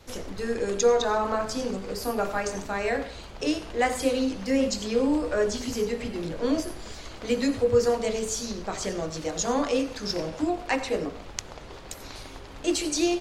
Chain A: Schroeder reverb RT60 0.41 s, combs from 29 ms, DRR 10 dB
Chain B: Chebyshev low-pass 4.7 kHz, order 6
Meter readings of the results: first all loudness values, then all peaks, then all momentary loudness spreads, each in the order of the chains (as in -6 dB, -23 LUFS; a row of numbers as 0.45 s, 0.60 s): -26.5 LUFS, -28.0 LUFS; -8.5 dBFS, -11.0 dBFS; 15 LU, 17 LU